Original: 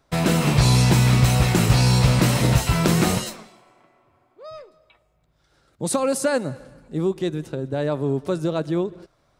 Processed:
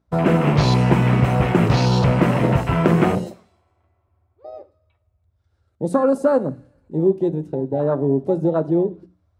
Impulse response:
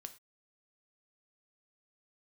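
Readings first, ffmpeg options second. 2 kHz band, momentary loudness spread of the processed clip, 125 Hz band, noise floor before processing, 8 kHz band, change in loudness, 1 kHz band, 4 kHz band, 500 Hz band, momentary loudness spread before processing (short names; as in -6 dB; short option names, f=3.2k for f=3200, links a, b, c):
-1.0 dB, 9 LU, 0.0 dB, -65 dBFS, under -10 dB, +1.5 dB, +3.5 dB, -6.0 dB, +5.0 dB, 12 LU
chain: -filter_complex "[0:a]aeval=exprs='val(0)+0.00355*(sin(2*PI*60*n/s)+sin(2*PI*2*60*n/s)/2+sin(2*PI*3*60*n/s)/3+sin(2*PI*4*60*n/s)/4+sin(2*PI*5*60*n/s)/5)':c=same,afwtdn=0.0447,highpass=f=180:p=1,tiltshelf=f=1.5k:g=4,bandreject=f=60:t=h:w=6,bandreject=f=120:t=h:w=6,bandreject=f=180:t=h:w=6,bandreject=f=240:t=h:w=6,bandreject=f=300:t=h:w=6,asplit=2[a][b];[1:a]atrim=start_sample=2205[c];[b][c]afir=irnorm=-1:irlink=0,volume=5dB[d];[a][d]amix=inputs=2:normalize=0,volume=-3dB"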